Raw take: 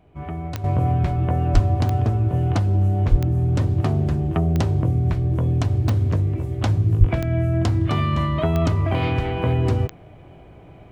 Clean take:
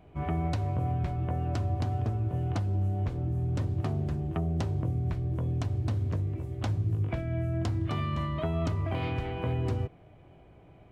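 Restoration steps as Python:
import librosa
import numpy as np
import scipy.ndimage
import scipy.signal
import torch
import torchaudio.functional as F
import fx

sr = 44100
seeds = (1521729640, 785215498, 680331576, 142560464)

y = fx.fix_declick_ar(x, sr, threshold=10.0)
y = fx.highpass(y, sr, hz=140.0, slope=24, at=(1.53, 1.65), fade=0.02)
y = fx.highpass(y, sr, hz=140.0, slope=24, at=(3.1, 3.22), fade=0.02)
y = fx.highpass(y, sr, hz=140.0, slope=24, at=(6.99, 7.11), fade=0.02)
y = fx.gain(y, sr, db=fx.steps((0.0, 0.0), (0.64, -10.0)))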